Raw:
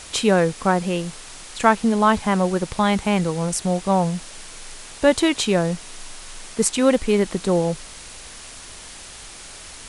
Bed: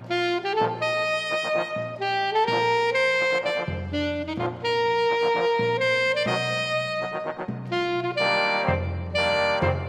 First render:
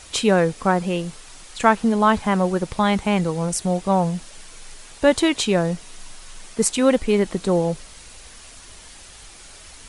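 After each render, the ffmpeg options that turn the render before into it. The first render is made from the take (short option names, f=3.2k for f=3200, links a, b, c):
-af "afftdn=nr=6:nf=-40"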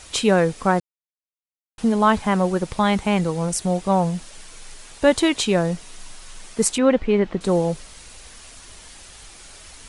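-filter_complex "[0:a]asettb=1/sr,asplit=3[a][b][c];[a]atrim=end=6.784[d];[b]atrim=start=6.78:end=7.41,asetpts=PTS-STARTPTS,afade=t=in:d=0.004:c=qsin,afade=t=out:st=0.626:d=0.004:c=qsin,lowpass=2.8k[e];[c]atrim=start=7.406[f];[d][e]acrossfade=d=0.004:c1=hsin:c2=qsin[g];[g][f]acrossfade=d=0.004:c1=qsin:c2=hsin,asplit=3[h][i][j];[h]atrim=end=0.8,asetpts=PTS-STARTPTS,afade=t=out:st=0.796:d=0.004:c=hsin[k];[i]atrim=start=0.8:end=1.78,asetpts=PTS-STARTPTS,volume=0[l];[j]atrim=start=1.78,asetpts=PTS-STARTPTS,afade=t=in:d=0.004:c=hsin[m];[k][l][m]concat=n=3:v=0:a=1"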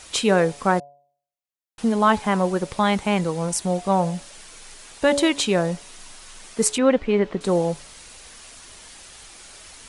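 -af "lowshelf=f=120:g=-8,bandreject=f=142.1:t=h:w=4,bandreject=f=284.2:t=h:w=4,bandreject=f=426.3:t=h:w=4,bandreject=f=568.4:t=h:w=4,bandreject=f=710.5:t=h:w=4,bandreject=f=852.6:t=h:w=4,bandreject=f=994.7:t=h:w=4"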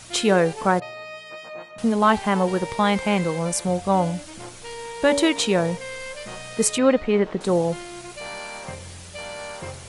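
-filter_complex "[1:a]volume=-12.5dB[a];[0:a][a]amix=inputs=2:normalize=0"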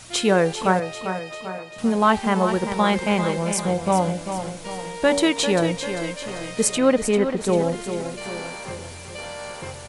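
-af "aecho=1:1:395|790|1185|1580|1975|2370:0.355|0.181|0.0923|0.0471|0.024|0.0122"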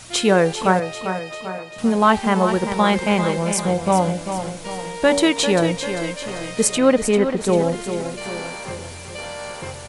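-af "volume=2.5dB,alimiter=limit=-3dB:level=0:latency=1"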